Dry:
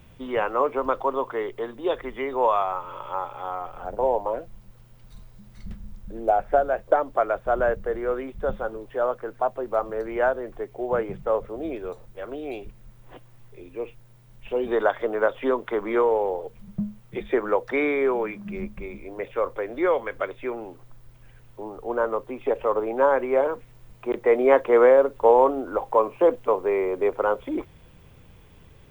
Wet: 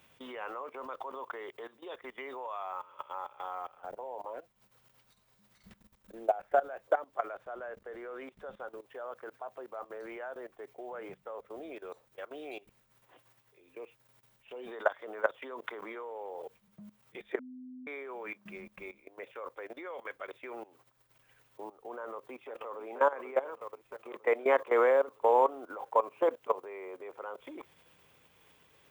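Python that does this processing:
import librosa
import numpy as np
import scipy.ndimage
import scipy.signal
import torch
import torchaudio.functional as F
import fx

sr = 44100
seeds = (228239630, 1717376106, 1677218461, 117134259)

y = fx.high_shelf(x, sr, hz=8100.0, db=-7.0, at=(7.31, 8.68))
y = fx.echo_throw(y, sr, start_s=21.99, length_s=0.86, ms=480, feedback_pct=70, wet_db=-10.5)
y = fx.edit(y, sr, fx.bleep(start_s=17.39, length_s=0.48, hz=254.0, db=-23.5), tone=tone)
y = fx.level_steps(y, sr, step_db=18)
y = fx.highpass(y, sr, hz=860.0, slope=6)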